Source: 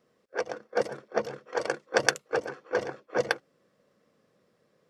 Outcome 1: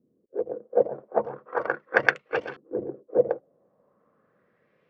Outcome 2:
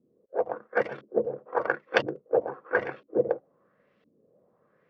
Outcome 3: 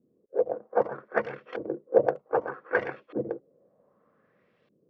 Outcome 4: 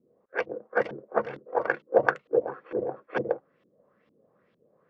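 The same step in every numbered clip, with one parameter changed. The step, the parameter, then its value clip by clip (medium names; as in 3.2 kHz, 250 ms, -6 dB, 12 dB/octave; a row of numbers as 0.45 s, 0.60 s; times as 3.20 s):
LFO low-pass, rate: 0.39 Hz, 0.99 Hz, 0.64 Hz, 2.2 Hz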